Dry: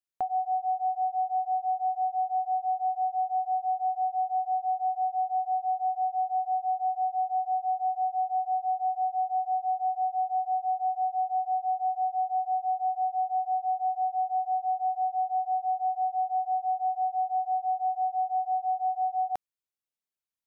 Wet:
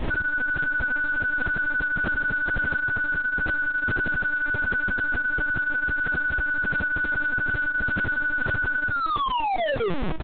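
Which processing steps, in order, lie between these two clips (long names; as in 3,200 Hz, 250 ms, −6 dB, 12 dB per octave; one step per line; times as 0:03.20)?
turntable brake at the end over 2.71 s
mains-hum notches 60/120/180/240/300 Hz
reverb reduction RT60 1.1 s
automatic gain control gain up to 7 dB
surface crackle 140 per second −33 dBFS
comparator with hysteresis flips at −33.5 dBFS
ambience of single reflections 23 ms −17 dB, 77 ms −15 dB
wrong playback speed 7.5 ips tape played at 15 ips
linear-prediction vocoder at 8 kHz pitch kept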